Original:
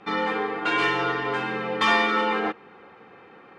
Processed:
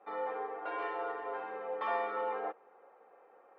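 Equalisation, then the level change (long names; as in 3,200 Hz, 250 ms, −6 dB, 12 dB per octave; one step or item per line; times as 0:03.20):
four-pole ladder band-pass 690 Hz, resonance 50%
0.0 dB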